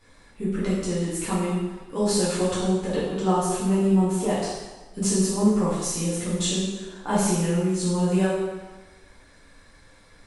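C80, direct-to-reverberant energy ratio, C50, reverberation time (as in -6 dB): 2.5 dB, -10.0 dB, 0.0 dB, 1.3 s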